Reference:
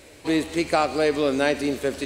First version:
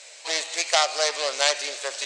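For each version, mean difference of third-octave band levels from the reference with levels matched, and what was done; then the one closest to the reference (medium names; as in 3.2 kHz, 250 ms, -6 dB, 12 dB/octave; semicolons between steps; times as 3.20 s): 12.0 dB: self-modulated delay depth 0.22 ms; elliptic band-pass 610–8000 Hz, stop band 60 dB; peaking EQ 6.2 kHz +13 dB 2 oct; trim -1 dB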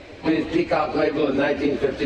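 6.5 dB: phase randomisation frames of 50 ms; compression 5:1, threshold -26 dBFS, peak gain reduction 10 dB; distance through air 200 m; trim +9 dB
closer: second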